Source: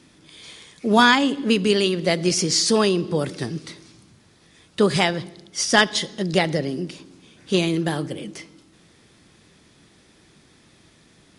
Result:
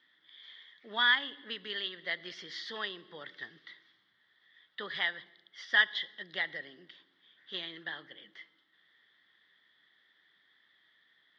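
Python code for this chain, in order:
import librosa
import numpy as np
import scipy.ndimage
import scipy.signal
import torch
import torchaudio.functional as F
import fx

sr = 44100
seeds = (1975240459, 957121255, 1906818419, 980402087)

y = fx.double_bandpass(x, sr, hz=2500.0, octaves=0.82)
y = fx.air_absorb(y, sr, metres=290.0)
y = y * librosa.db_to_amplitude(1.0)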